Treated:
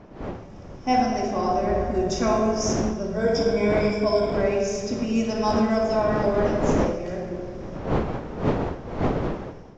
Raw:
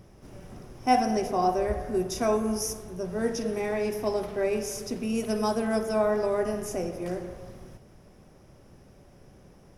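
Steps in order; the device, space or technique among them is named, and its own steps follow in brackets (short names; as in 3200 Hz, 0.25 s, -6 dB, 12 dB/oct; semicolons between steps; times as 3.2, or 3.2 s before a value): 3.16–4.41 ripple EQ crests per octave 1.7, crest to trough 17 dB; shoebox room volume 1900 m³, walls mixed, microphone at 2.3 m; smartphone video outdoors (wind noise 490 Hz; AGC gain up to 11.5 dB; gain -8 dB; AAC 64 kbps 16000 Hz)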